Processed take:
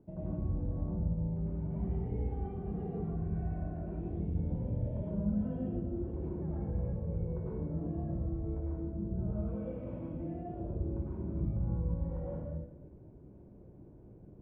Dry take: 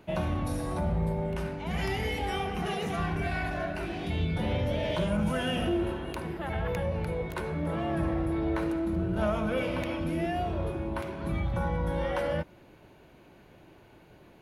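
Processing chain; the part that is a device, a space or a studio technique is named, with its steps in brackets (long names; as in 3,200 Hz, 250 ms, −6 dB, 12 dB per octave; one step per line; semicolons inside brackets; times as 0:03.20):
0:09.37–0:10.60: spectral tilt +2 dB per octave
television next door (downward compressor 4 to 1, threshold −34 dBFS, peak gain reduction 9.5 dB; low-pass filter 360 Hz 12 dB per octave; convolution reverb RT60 0.75 s, pre-delay 95 ms, DRR −6.5 dB)
level −4.5 dB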